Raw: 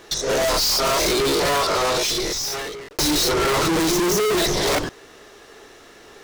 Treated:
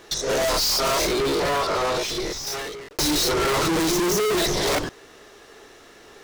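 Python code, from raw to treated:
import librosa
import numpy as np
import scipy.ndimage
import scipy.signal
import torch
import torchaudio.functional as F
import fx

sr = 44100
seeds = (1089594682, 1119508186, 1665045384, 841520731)

y = fx.high_shelf(x, sr, hz=3800.0, db=-7.5, at=(1.06, 2.47))
y = y * librosa.db_to_amplitude(-2.0)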